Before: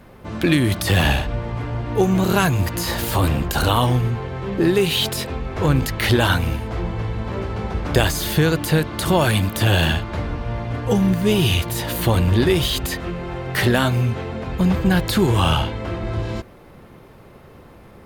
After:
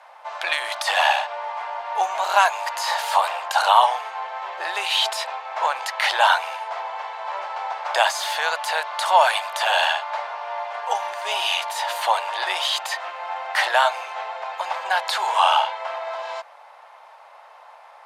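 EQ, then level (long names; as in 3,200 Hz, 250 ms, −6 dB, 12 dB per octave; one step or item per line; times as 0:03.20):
elliptic high-pass filter 630 Hz, stop band 60 dB
low-pass filter 7,600 Hz 12 dB per octave
parametric band 890 Hz +10 dB 0.53 octaves
+1.0 dB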